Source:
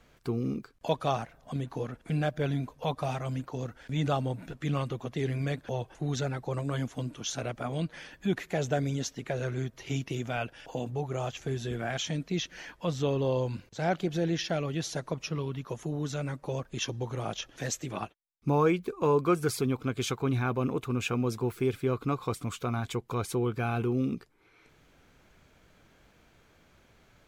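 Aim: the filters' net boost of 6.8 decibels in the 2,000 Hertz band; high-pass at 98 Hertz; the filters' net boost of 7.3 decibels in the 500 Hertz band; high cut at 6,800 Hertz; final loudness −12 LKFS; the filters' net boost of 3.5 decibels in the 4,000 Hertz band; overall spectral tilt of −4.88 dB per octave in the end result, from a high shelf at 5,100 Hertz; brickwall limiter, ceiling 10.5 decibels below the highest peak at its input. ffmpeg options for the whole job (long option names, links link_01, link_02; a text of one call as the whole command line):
ffmpeg -i in.wav -af "highpass=98,lowpass=6800,equalizer=frequency=500:width_type=o:gain=8.5,equalizer=frequency=2000:width_type=o:gain=8.5,equalizer=frequency=4000:width_type=o:gain=3,highshelf=frequency=5100:gain=-3.5,volume=18.5dB,alimiter=limit=0dB:level=0:latency=1" out.wav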